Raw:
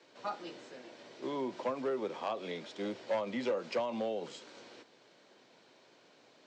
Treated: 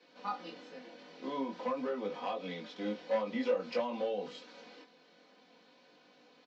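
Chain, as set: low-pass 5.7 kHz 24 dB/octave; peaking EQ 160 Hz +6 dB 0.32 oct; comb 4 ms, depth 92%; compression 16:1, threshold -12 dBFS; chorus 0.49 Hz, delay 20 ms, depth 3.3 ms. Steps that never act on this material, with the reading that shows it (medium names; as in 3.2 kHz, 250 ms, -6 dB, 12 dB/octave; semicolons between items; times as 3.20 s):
compression, threshold -12 dBFS: peak at its input -18.0 dBFS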